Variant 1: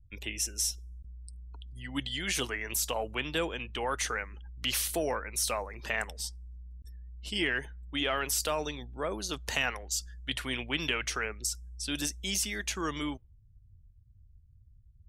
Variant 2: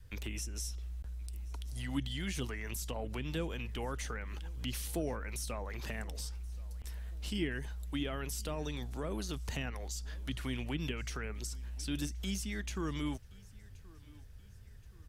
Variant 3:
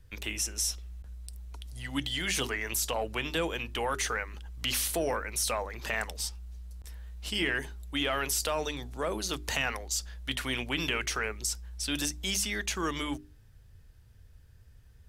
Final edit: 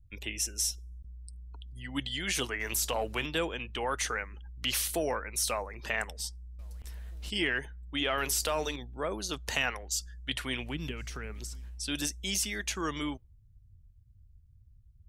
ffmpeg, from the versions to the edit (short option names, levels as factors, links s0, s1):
-filter_complex "[2:a]asplit=2[s0][s1];[1:a]asplit=2[s2][s3];[0:a]asplit=5[s4][s5][s6][s7][s8];[s4]atrim=end=2.602[s9];[s0]atrim=start=2.598:end=3.262[s10];[s5]atrim=start=3.258:end=6.592[s11];[s2]atrim=start=6.588:end=7.302[s12];[s6]atrim=start=7.298:end=8.182[s13];[s1]atrim=start=8.178:end=8.762[s14];[s7]atrim=start=8.758:end=10.77[s15];[s3]atrim=start=10.53:end=11.82[s16];[s8]atrim=start=11.58[s17];[s9][s10]acrossfade=d=0.004:c1=hsin:c2=hsin[s18];[s18][s11]acrossfade=d=0.004:c1=hsin:c2=hsin[s19];[s19][s12]acrossfade=d=0.004:c1=hsin:c2=hsin[s20];[s20][s13]acrossfade=d=0.004:c1=hsin:c2=hsin[s21];[s21][s14]acrossfade=d=0.004:c1=hsin:c2=hsin[s22];[s22][s15]acrossfade=d=0.004:c1=hsin:c2=hsin[s23];[s23][s16]acrossfade=d=0.24:c1=tri:c2=tri[s24];[s24][s17]acrossfade=d=0.24:c1=tri:c2=tri"